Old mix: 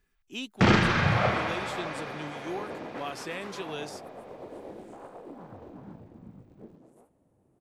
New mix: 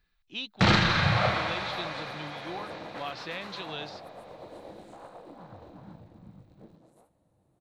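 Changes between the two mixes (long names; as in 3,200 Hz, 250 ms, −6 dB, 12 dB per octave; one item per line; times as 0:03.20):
speech: add low-pass filter 4,600 Hz 24 dB per octave
master: add thirty-one-band graphic EQ 250 Hz −8 dB, 400 Hz −9 dB, 4,000 Hz +11 dB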